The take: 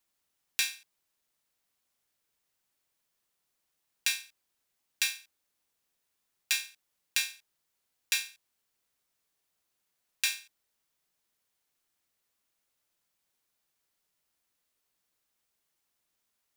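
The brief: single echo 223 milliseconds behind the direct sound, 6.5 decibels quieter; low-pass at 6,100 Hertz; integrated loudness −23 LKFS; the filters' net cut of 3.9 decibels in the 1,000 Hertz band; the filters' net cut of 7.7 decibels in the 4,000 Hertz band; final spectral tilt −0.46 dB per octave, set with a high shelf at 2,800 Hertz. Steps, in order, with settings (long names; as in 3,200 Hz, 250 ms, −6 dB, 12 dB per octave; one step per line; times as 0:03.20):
low-pass filter 6,100 Hz
parametric band 1,000 Hz −4 dB
high-shelf EQ 2,800 Hz −5 dB
parametric band 4,000 Hz −4 dB
single-tap delay 223 ms −6.5 dB
level +16 dB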